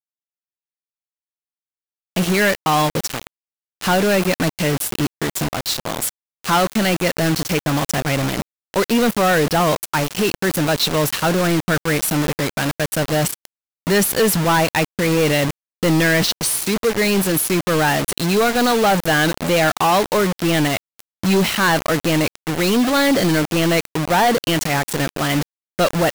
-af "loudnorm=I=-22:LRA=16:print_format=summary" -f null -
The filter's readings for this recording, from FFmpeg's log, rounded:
Input Integrated:    -18.3 LUFS
Input True Peak:      -8.6 dBTP
Input LRA:             3.1 LU
Input Threshold:     -28.4 LUFS